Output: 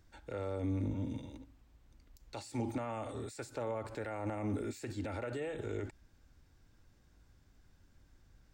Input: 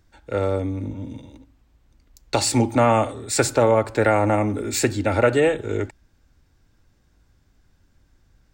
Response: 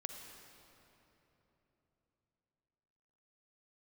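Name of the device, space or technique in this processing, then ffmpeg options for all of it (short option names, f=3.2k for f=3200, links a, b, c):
de-esser from a sidechain: -filter_complex "[0:a]asplit=2[a][b];[b]highpass=f=5.7k:p=1,apad=whole_len=376418[c];[a][c]sidechaincompress=threshold=-52dB:ratio=4:attack=1.4:release=45,volume=-4.5dB"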